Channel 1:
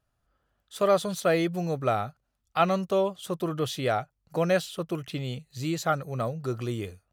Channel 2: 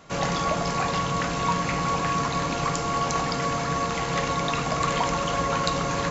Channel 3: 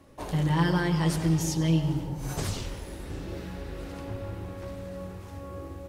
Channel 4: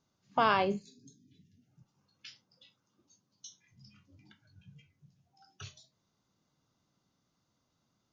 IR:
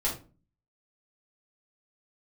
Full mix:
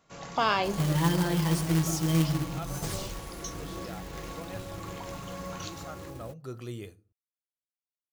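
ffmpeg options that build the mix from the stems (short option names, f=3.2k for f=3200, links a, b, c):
-filter_complex "[0:a]agate=range=-11dB:threshold=-40dB:ratio=16:detection=peak,volume=-8.5dB,afade=t=in:st=6.02:d=0.58:silence=0.281838,asplit=3[a][b][c];[b]volume=-21dB[d];[1:a]volume=-17dB[e];[2:a]aecho=1:1:6:0.4,acrusher=bits=3:mode=log:mix=0:aa=0.000001,adelay=450,volume=-4dB[f];[3:a]highshelf=f=4.7k:g=11.5,acontrast=90,aeval=exprs='sgn(val(0))*max(abs(val(0))-0.002,0)':c=same,volume=-7dB[g];[c]apad=whole_len=269446[h];[e][h]sidechaincompress=threshold=-45dB:ratio=8:attack=16:release=799[i];[4:a]atrim=start_sample=2205[j];[d][j]afir=irnorm=-1:irlink=0[k];[a][i][f][g][k]amix=inputs=5:normalize=0,highshelf=f=5.7k:g=4.5"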